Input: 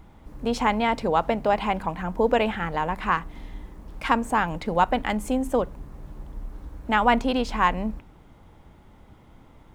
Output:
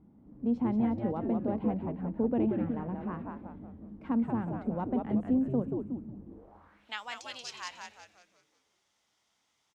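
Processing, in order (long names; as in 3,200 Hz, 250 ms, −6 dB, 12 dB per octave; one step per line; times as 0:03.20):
echo with shifted repeats 182 ms, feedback 44%, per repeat −120 Hz, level −3.5 dB
band-pass filter sweep 230 Hz → 5,800 Hz, 0:06.25–0:07.01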